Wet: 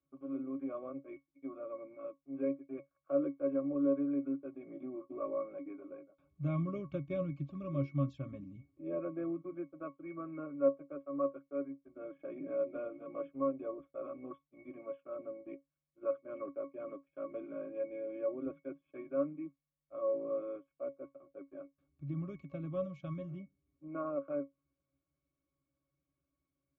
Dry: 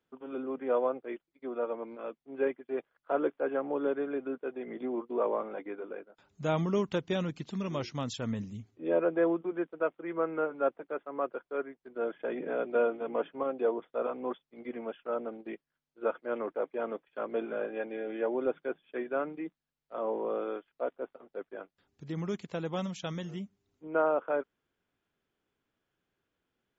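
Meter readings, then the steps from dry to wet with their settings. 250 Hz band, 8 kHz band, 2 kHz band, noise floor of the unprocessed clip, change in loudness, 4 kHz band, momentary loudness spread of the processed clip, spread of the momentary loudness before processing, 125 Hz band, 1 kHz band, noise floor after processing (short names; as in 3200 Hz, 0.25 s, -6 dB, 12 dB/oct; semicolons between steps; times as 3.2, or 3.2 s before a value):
-2.5 dB, n/a, -16.5 dB, under -85 dBFS, -5.5 dB, under -20 dB, 14 LU, 13 LU, -0.5 dB, -11.5 dB, under -85 dBFS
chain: dynamic EQ 790 Hz, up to -7 dB, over -46 dBFS, Q 1.8; octave resonator C#, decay 0.15 s; gain +7 dB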